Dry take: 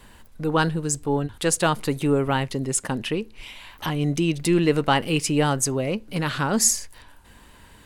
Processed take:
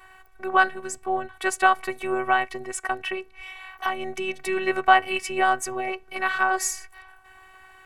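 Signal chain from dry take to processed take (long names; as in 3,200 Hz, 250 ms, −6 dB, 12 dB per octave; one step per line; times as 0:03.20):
flat-topped bell 1,200 Hz +14 dB 2.5 octaves
phases set to zero 377 Hz
level −6.5 dB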